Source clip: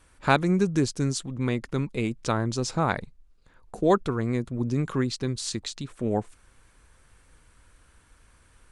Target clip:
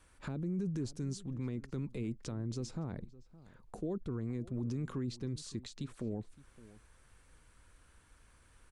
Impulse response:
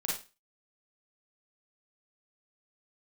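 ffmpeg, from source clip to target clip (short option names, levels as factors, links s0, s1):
-filter_complex "[0:a]acrossover=split=410[s0][s1];[s1]acompressor=threshold=0.00891:ratio=8[s2];[s0][s2]amix=inputs=2:normalize=0,alimiter=limit=0.0631:level=0:latency=1:release=22,asplit=2[s3][s4];[s4]adelay=565.6,volume=0.112,highshelf=f=4000:g=-12.7[s5];[s3][s5]amix=inputs=2:normalize=0,volume=0.531"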